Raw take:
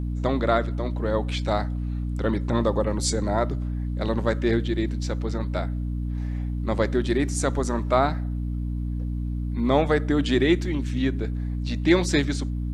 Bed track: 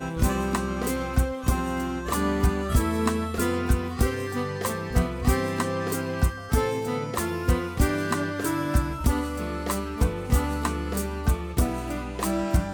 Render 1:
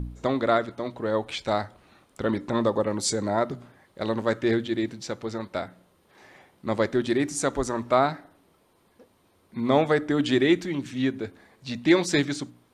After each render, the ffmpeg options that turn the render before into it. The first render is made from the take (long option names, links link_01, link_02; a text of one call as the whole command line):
ffmpeg -i in.wav -af "bandreject=frequency=60:width_type=h:width=4,bandreject=frequency=120:width_type=h:width=4,bandreject=frequency=180:width_type=h:width=4,bandreject=frequency=240:width_type=h:width=4,bandreject=frequency=300:width_type=h:width=4" out.wav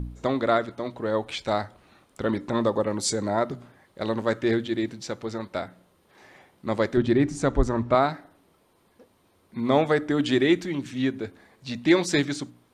ffmpeg -i in.wav -filter_complex "[0:a]asettb=1/sr,asplit=3[link_01][link_02][link_03];[link_01]atrim=end=6.974[link_04];[link_02]atrim=start=6.97:end=7.95,asetpts=PTS-STARTPTS,afade=type=in:duration=0.004:curve=qsin,afade=type=out:start_time=0.976:duration=0.004:curve=qsin,aemphasis=mode=reproduction:type=bsi[link_05];[link_03]atrim=start=7.946[link_06];[link_04][link_05]acrossfade=duration=0.004:curve1=hsin:curve2=qsin[link_07];[link_07][link_06]acrossfade=duration=0.004:curve1=qsin:curve2=hsin" out.wav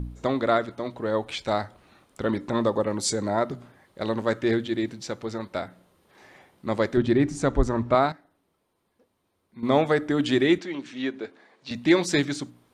ffmpeg -i in.wav -filter_complex "[0:a]asettb=1/sr,asplit=3[link_01][link_02][link_03];[link_01]atrim=end=10.584[link_04];[link_02]atrim=start=10.58:end=11.71,asetpts=PTS-STARTPTS,afade=type=in:duration=0.004:curve=qsin,afade=type=out:start_time=1.126:duration=0.004:curve=qsin,highpass=310,lowpass=5700[link_05];[link_03]atrim=start=11.706[link_06];[link_04][link_05]acrossfade=duration=0.004:curve1=hsin:curve2=qsin[link_07];[link_07][link_06]acrossfade=duration=0.004:curve1=qsin:curve2=hsin,asplit=3[link_08][link_09][link_10];[link_08]atrim=end=8.122[link_11];[link_09]atrim=start=8.118:end=9.632,asetpts=PTS-STARTPTS,volume=-10.5dB[link_12];[link_10]atrim=start=9.628[link_13];[link_11][link_12]acrossfade=duration=0.004:curve1=hsin:curve2=hsin[link_14];[link_14][link_13]acrossfade=duration=0.004:curve1=hsin:curve2=hsin" out.wav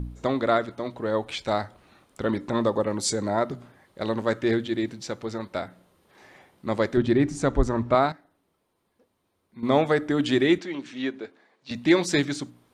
ffmpeg -i in.wav -filter_complex "[0:a]asplit=2[link_01][link_02];[link_01]atrim=end=11.69,asetpts=PTS-STARTPTS,afade=type=out:start_time=11.08:duration=0.61:curve=qua:silence=0.473151[link_03];[link_02]atrim=start=11.69,asetpts=PTS-STARTPTS,afade=type=in:duration=0.004:curve=hsin:silence=0.473151[link_04];[link_03][link_04]concat=n=2:v=0:a=1" out.wav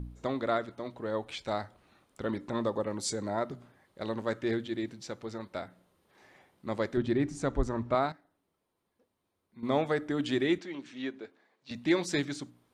ffmpeg -i in.wav -af "volume=-7.5dB" out.wav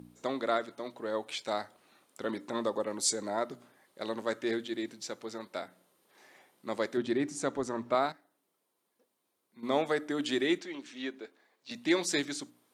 ffmpeg -i in.wav -af "highpass=240,aemphasis=mode=production:type=cd" out.wav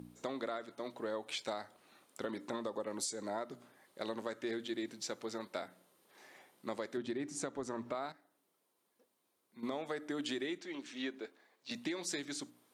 ffmpeg -i in.wav -af "alimiter=limit=-22.5dB:level=0:latency=1:release=442,acompressor=threshold=-35dB:ratio=6" out.wav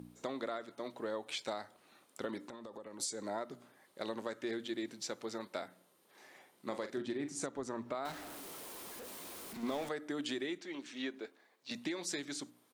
ffmpeg -i in.wav -filter_complex "[0:a]asettb=1/sr,asplit=3[link_01][link_02][link_03];[link_01]atrim=end=2.384[link_04];[link_02]atrim=start=2.38:end=3,asetpts=PTS-STARTPTS,afade=type=in:duration=0.004:curve=qsin,afade=type=out:start_time=0.616:duration=0.004:curve=qsin,acompressor=threshold=-45dB:ratio=5:attack=3.2:release=140:knee=1:detection=peak[link_05];[link_03]atrim=start=2.996[link_06];[link_04][link_05]acrossfade=duration=0.004:curve1=hsin:curve2=qsin[link_07];[link_07][link_06]acrossfade=duration=0.004:curve1=qsin:curve2=hsin,asplit=3[link_08][link_09][link_10];[link_08]afade=type=out:start_time=6.53:duration=0.02[link_11];[link_09]asplit=2[link_12][link_13];[link_13]adelay=42,volume=-9dB[link_14];[link_12][link_14]amix=inputs=2:normalize=0,afade=type=in:start_time=6.53:duration=0.02,afade=type=out:start_time=7.45:duration=0.02[link_15];[link_10]afade=type=in:start_time=7.45:duration=0.02[link_16];[link_11][link_15][link_16]amix=inputs=3:normalize=0,asettb=1/sr,asplit=3[link_17][link_18][link_19];[link_17]atrim=end=8.054[link_20];[link_18]atrim=start=8.05:end=9.89,asetpts=PTS-STARTPTS,afade=type=in:duration=0.004:curve=qsin,afade=type=out:start_time=1.836:duration=0.004:curve=qsin,aeval=exprs='val(0)+0.5*0.00794*sgn(val(0))':channel_layout=same[link_21];[link_19]atrim=start=9.886[link_22];[link_20][link_21]acrossfade=duration=0.004:curve1=hsin:curve2=qsin[link_23];[link_23][link_22]acrossfade=duration=0.004:curve1=qsin:curve2=hsin" out.wav